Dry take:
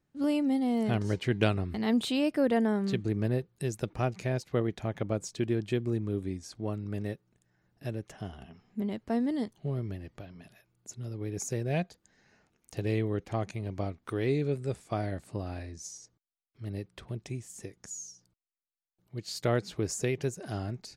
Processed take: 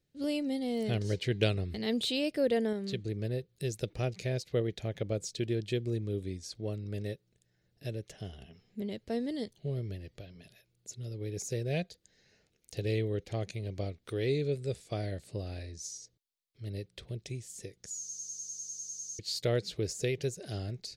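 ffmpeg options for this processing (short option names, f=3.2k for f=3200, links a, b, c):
-filter_complex "[0:a]asplit=15[a][b][c][d][e][f][g][h][i][j][k][l][m][n][o];[a]atrim=end=2.732[p];[b]atrim=start=2.728:end=3.492,asetpts=PTS-STARTPTS,volume=-3dB[q];[c]atrim=start=3.488:end=18.092[r];[d]atrim=start=17.988:end=18.092[s];[e]atrim=start=17.988:end=18.092[t];[f]atrim=start=17.988:end=18.092[u];[g]atrim=start=17.988:end=18.092[v];[h]atrim=start=17.988:end=18.092[w];[i]atrim=start=17.988:end=18.092[x];[j]atrim=start=17.988:end=18.092[y];[k]atrim=start=17.988:end=18.092[z];[l]atrim=start=17.988:end=18.092[aa];[m]atrim=start=17.988:end=18.092[ab];[n]atrim=start=17.988:end=18.092[ac];[o]atrim=start=19.188[ad];[p][q]acrossfade=d=0.004:c1=hsin:c2=hsin[ae];[ae][r]acrossfade=d=0.004:c1=hsin:c2=hsin[af];[af][s]acrossfade=d=0.004:c1=hsin:c2=hsin[ag];[ag][t]acrossfade=d=0.004:c1=hsin:c2=hsin[ah];[ah][u]acrossfade=d=0.004:c1=hsin:c2=hsin[ai];[ai][v]acrossfade=d=0.004:c1=hsin:c2=hsin[aj];[aj][w]acrossfade=d=0.004:c1=hsin:c2=hsin[ak];[ak][x]acrossfade=d=0.004:c1=hsin:c2=hsin[al];[al][y]acrossfade=d=0.004:c1=hsin:c2=hsin[am];[am][z]acrossfade=d=0.004:c1=hsin:c2=hsin[an];[an][aa]acrossfade=d=0.004:c1=hsin:c2=hsin[ao];[ao][ab]acrossfade=d=0.004:c1=hsin:c2=hsin[ap];[ap][ac]acrossfade=d=0.004:c1=hsin:c2=hsin[aq];[aq][ad]acrossfade=d=0.004:c1=hsin:c2=hsin,equalizer=f=990:t=o:w=3:g=-10.5,deesser=0.85,equalizer=f=250:t=o:w=1:g=-5,equalizer=f=500:t=o:w=1:g=10,equalizer=f=1k:t=o:w=1:g=-5,equalizer=f=2k:t=o:w=1:g=4,equalizer=f=4k:t=o:w=1:g=8"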